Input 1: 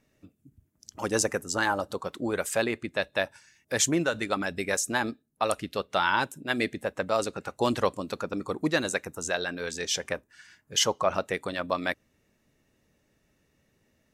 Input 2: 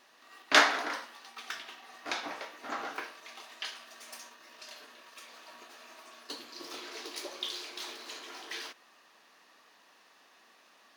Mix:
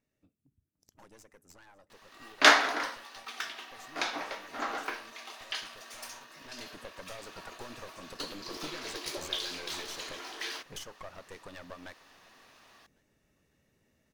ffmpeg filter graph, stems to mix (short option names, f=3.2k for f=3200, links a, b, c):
-filter_complex "[0:a]acompressor=threshold=-35dB:ratio=12,aeval=exprs='clip(val(0),-1,0.00501)':c=same,volume=-3dB,afade=t=in:st=6.33:d=0.46:silence=0.266073,asplit=2[a][b];[b]volume=-23dB[c];[1:a]adelay=1900,volume=2.5dB[d];[c]aecho=0:1:551|1102|1653|2204|2755|3306:1|0.4|0.16|0.064|0.0256|0.0102[e];[a][d][e]amix=inputs=3:normalize=0"